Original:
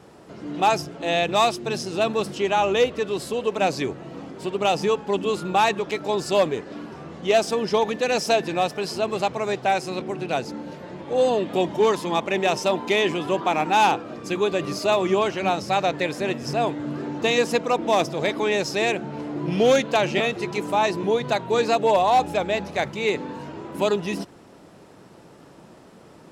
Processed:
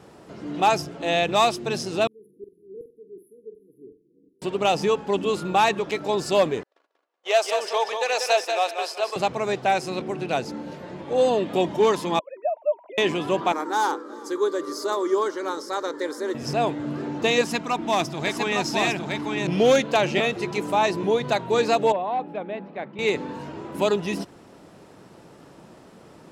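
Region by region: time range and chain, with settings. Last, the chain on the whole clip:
0:02.07–0:04.42: auto-filter band-pass saw down 2.7 Hz 960–4,700 Hz + linear-phase brick-wall band-stop 480–9,900 Hz + flutter between parallel walls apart 7.9 metres, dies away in 0.31 s
0:06.63–0:09.16: noise gate −32 dBFS, range −39 dB + high-pass filter 520 Hz 24 dB per octave + repeating echo 188 ms, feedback 26%, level −6.5 dB
0:12.19–0:12.98: three sine waves on the formant tracks + pair of resonant band-passes 430 Hz, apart 1.1 octaves
0:13.52–0:16.35: linear-phase brick-wall high-pass 170 Hz + phaser with its sweep stopped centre 700 Hz, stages 6 + single-tap delay 375 ms −23.5 dB
0:17.41–0:19.47: parametric band 500 Hz −13.5 dB 0.44 octaves + single-tap delay 858 ms −3.5 dB
0:21.92–0:22.99: four-pole ladder high-pass 160 Hz, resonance 30% + high-frequency loss of the air 460 metres
whole clip: no processing

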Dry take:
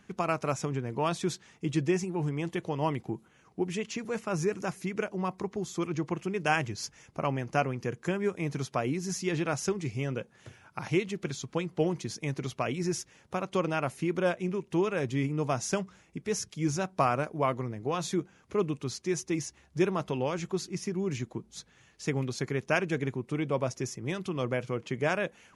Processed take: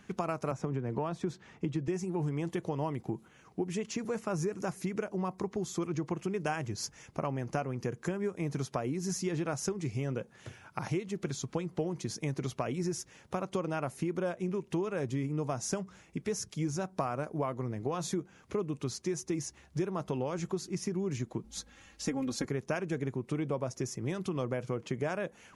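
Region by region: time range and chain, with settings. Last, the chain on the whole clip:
0:00.51–0:01.88: low-pass filter 1,900 Hz 6 dB per octave + multiband upward and downward compressor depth 40%
0:21.44–0:22.45: low-shelf EQ 68 Hz +8.5 dB + comb filter 3.7 ms, depth 84%
whole clip: dynamic equaliser 2,800 Hz, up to −7 dB, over −49 dBFS, Q 0.85; downward compressor, threshold −32 dBFS; level +2.5 dB

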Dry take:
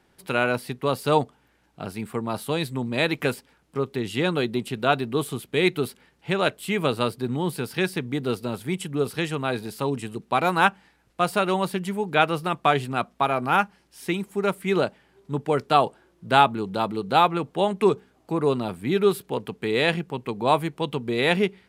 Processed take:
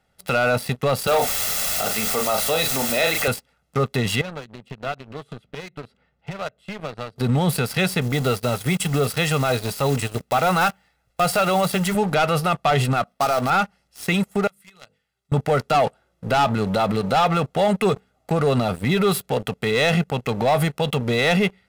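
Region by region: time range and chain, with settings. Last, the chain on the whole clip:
0:01.07–0:03.28: high-pass filter 310 Hz + double-tracking delay 37 ms −7 dB + bit-depth reduction 6 bits, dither triangular
0:04.21–0:07.16: downward compressor 3 to 1, threshold −40 dBFS + head-to-tape spacing loss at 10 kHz 22 dB
0:08.01–0:11.95: one scale factor per block 5 bits + notch filter 210 Hz, Q 5.2
0:13.07–0:13.50: gap after every zero crossing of 0.11 ms + parametric band 70 Hz −14 dB 1.1 octaves + notch filter 7,000 Hz, Q 5.9
0:14.47–0:15.32: guitar amp tone stack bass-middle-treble 5-5-5 + mains-hum notches 50/100/150/200/250/300/350/400/450/500 Hz + downward compressor 8 to 1, threshold −44 dBFS
whole clip: comb filter 1.5 ms, depth 71%; leveller curve on the samples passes 3; brickwall limiter −12.5 dBFS

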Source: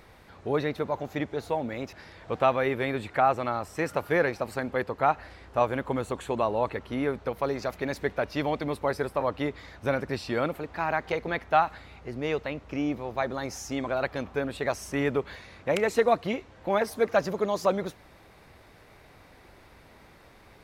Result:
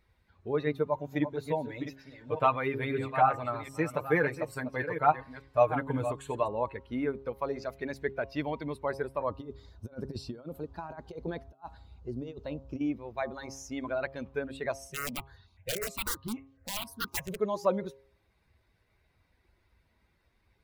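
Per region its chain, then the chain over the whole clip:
0:00.66–0:06.48: delay that plays each chunk backwards 432 ms, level −7 dB + high-shelf EQ 12,000 Hz +6 dB + comb filter 6.7 ms, depth 60%
0:09.30–0:12.81: parametric band 2,100 Hz −12.5 dB 0.98 octaves + compressor whose output falls as the input rises −32 dBFS, ratio −0.5
0:14.87–0:17.40: parametric band 100 Hz +7 dB 0.64 octaves + wrap-around overflow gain 20 dB + step-sequenced phaser 10 Hz 270–2,300 Hz
whole clip: spectral dynamics exaggerated over time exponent 1.5; hum removal 135.5 Hz, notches 9; dynamic equaliser 4,700 Hz, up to −4 dB, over −48 dBFS, Q 0.81

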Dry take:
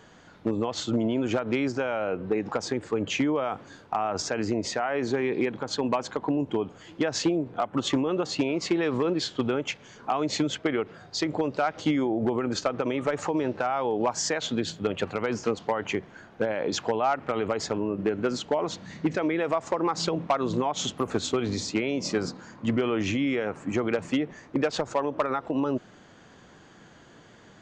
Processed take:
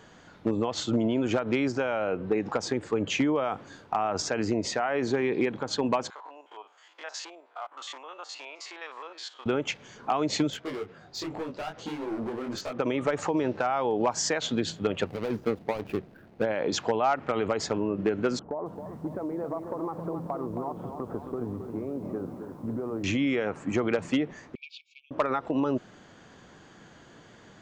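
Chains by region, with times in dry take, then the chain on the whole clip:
0:06.10–0:09.46: spectrum averaged block by block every 50 ms + four-pole ladder high-pass 680 Hz, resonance 25%
0:10.50–0:12.79: high-shelf EQ 5,400 Hz −3.5 dB + gain into a clipping stage and back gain 26.5 dB + micro pitch shift up and down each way 47 cents
0:15.06–0:16.43: running median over 41 samples + parametric band 7,800 Hz −5 dB 0.88 octaves
0:18.39–0:23.04: low-pass filter 1,100 Hz 24 dB per octave + downward compressor 2.5 to 1, threshold −32 dBFS + feedback echo at a low word length 269 ms, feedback 55%, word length 10 bits, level −7.5 dB
0:24.55–0:25.11: linear-phase brick-wall band-pass 2,200–7,800 Hz + high-frequency loss of the air 370 metres
whole clip: no processing

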